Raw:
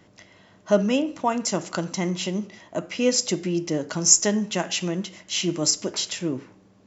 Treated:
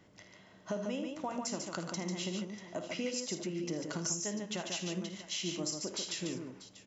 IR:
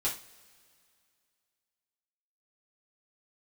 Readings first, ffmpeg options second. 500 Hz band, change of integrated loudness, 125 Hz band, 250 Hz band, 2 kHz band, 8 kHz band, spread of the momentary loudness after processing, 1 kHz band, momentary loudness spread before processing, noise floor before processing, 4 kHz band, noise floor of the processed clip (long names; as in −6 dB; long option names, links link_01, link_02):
−14.0 dB, −13.5 dB, −11.5 dB, −12.5 dB, −11.0 dB, can't be measured, 7 LU, −13.0 dB, 13 LU, −56 dBFS, −11.5 dB, −60 dBFS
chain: -filter_complex "[0:a]acompressor=threshold=-28dB:ratio=6,asplit=2[link_01][link_02];[link_02]aecho=0:1:53|79|145|641:0.266|0.237|0.562|0.168[link_03];[link_01][link_03]amix=inputs=2:normalize=0,volume=-7dB"